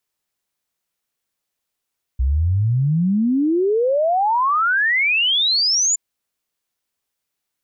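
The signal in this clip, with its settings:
exponential sine sweep 61 Hz → 7,200 Hz 3.77 s −14.5 dBFS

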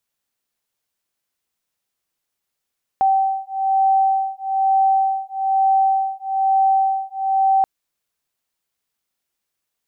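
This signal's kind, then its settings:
two tones that beat 773 Hz, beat 1.1 Hz, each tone −18 dBFS 4.63 s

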